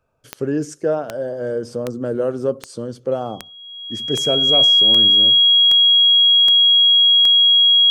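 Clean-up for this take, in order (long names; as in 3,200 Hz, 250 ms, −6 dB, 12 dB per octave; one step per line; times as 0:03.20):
click removal
notch filter 3,300 Hz, Q 30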